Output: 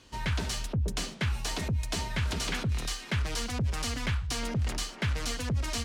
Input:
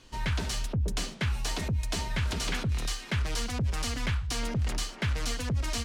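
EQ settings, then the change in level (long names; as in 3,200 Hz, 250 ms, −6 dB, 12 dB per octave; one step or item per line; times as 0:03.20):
high-pass filter 42 Hz
0.0 dB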